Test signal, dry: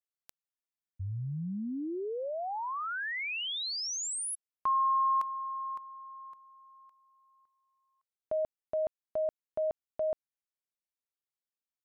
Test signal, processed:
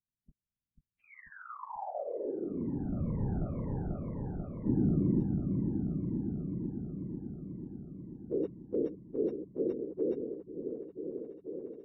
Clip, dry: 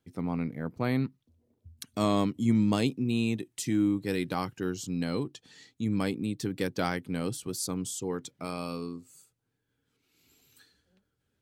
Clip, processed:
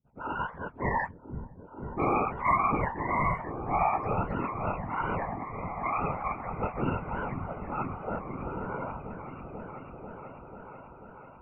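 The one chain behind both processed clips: spectrum mirrored in octaves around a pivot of 490 Hz; whisperiser; low-pass opened by the level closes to 310 Hz, open at -24.5 dBFS; on a send: repeats that get brighter 0.49 s, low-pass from 200 Hz, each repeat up 1 oct, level -3 dB

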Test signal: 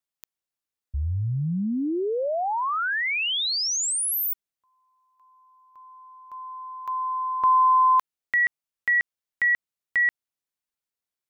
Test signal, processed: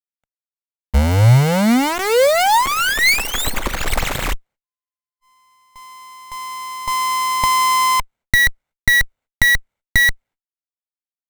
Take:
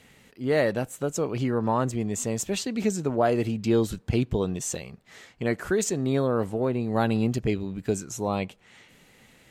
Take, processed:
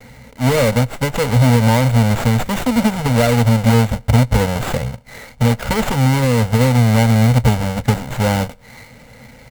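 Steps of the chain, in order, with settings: half-waves squared off; compressor, threshold -22 dBFS; comb 1.4 ms, depth 81%; gate -54 dBFS, range -45 dB; ripple EQ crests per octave 0.98, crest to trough 10 dB; running maximum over 9 samples; gain +7.5 dB

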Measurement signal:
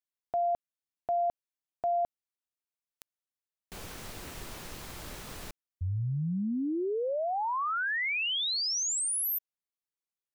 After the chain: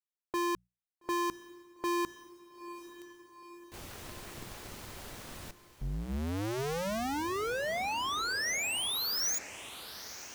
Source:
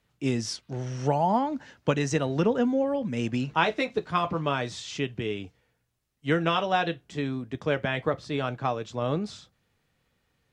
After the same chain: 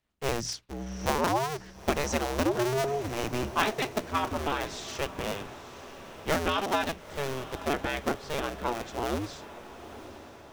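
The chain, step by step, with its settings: cycle switcher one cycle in 2, inverted; notches 60/120/180 Hz; gate -45 dBFS, range -6 dB; dynamic EQ 5900 Hz, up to +4 dB, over -53 dBFS, Q 4.5; on a send: diffused feedback echo 0.913 s, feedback 56%, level -14 dB; on the sum: gain -3 dB

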